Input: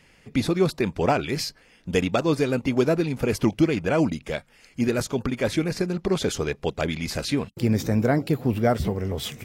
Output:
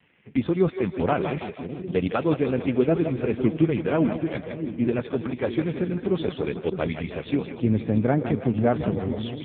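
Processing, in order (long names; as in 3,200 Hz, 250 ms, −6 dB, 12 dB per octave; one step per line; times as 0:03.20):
echo with a time of its own for lows and highs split 400 Hz, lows 614 ms, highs 162 ms, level −7.5 dB
AMR narrowband 5.15 kbit/s 8,000 Hz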